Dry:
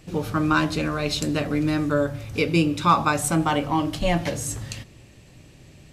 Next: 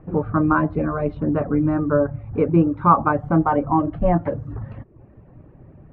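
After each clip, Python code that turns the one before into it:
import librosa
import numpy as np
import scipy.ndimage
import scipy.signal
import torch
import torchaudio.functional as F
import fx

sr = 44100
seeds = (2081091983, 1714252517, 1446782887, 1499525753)

y = scipy.signal.sosfilt(scipy.signal.butter(4, 1300.0, 'lowpass', fs=sr, output='sos'), x)
y = fx.dereverb_blind(y, sr, rt60_s=0.62)
y = y * 10.0 ** (5.0 / 20.0)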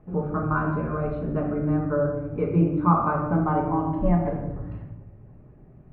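y = fx.room_shoebox(x, sr, seeds[0], volume_m3=470.0, walls='mixed', distance_m=1.4)
y = y * 10.0 ** (-8.5 / 20.0)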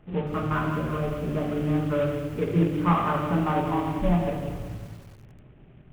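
y = fx.cvsd(x, sr, bps=16000)
y = fx.echo_crushed(y, sr, ms=190, feedback_pct=55, bits=7, wet_db=-11)
y = y * 10.0 ** (-1.0 / 20.0)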